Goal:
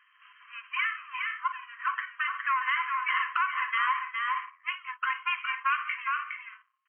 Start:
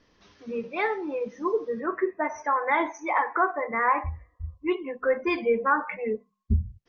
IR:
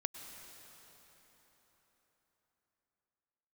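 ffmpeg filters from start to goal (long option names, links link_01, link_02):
-filter_complex "[0:a]aeval=exprs='if(lt(val(0),0),0.251*val(0),val(0))':channel_layout=same,afftfilt=real='re*between(b*sr/4096,1000,3200)':imag='im*between(b*sr/4096,1000,3200)':win_size=4096:overlap=0.75,asplit=2[link_01][link_02];[link_02]alimiter=level_in=2dB:limit=-24dB:level=0:latency=1:release=16,volume=-2dB,volume=0dB[link_03];[link_01][link_03]amix=inputs=2:normalize=0,aecho=1:1:412|466:0.447|0.158,acompressor=threshold=-29dB:ratio=2.5,volume=3dB"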